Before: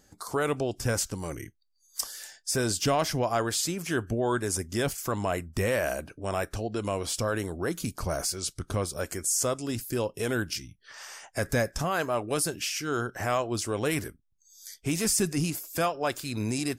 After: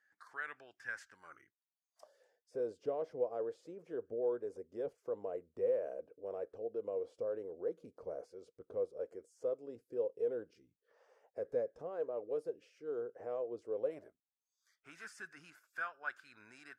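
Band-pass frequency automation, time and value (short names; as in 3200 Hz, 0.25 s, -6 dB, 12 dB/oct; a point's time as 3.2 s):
band-pass, Q 8.8
1.12 s 1700 Hz
2.27 s 480 Hz
13.76 s 480 Hz
14.97 s 1500 Hz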